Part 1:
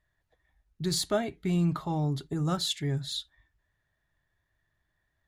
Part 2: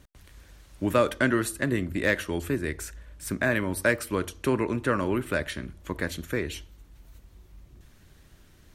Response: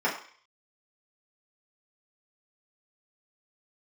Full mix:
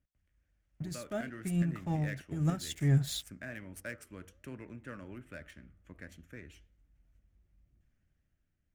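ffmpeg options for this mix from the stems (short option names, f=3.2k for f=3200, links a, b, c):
-filter_complex "[0:a]aeval=exprs='sgn(val(0))*max(abs(val(0))-0.00398,0)':c=same,volume=-0.5dB[a];[1:a]aemphasis=mode=production:type=75fm,flanger=delay=6.6:depth=8.3:regen=-87:speed=1.3:shape=triangular,adynamicsmooth=sensitivity=3:basefreq=2.7k,volume=-19dB,asplit=2[b][c];[c]apad=whole_len=232729[d];[a][d]sidechaincompress=threshold=-57dB:ratio=12:attack=11:release=252[e];[e][b]amix=inputs=2:normalize=0,equalizer=f=400:t=o:w=0.67:g=-8,equalizer=f=1k:t=o:w=0.67:g=-11,equalizer=f=4k:t=o:w=0.67:g=-12,equalizer=f=10k:t=o:w=0.67:g=-3,dynaudnorm=f=240:g=9:m=8dB"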